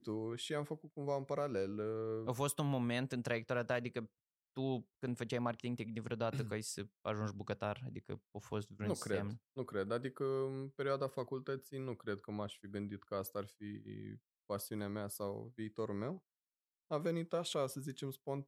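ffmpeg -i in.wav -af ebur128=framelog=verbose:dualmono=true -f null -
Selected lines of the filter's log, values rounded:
Integrated loudness:
  I:         -38.2 LUFS
  Threshold: -48.3 LUFS
Loudness range:
  LRA:         5.7 LU
  Threshold: -58.5 LUFS
  LRA low:   -41.8 LUFS
  LRA high:  -36.1 LUFS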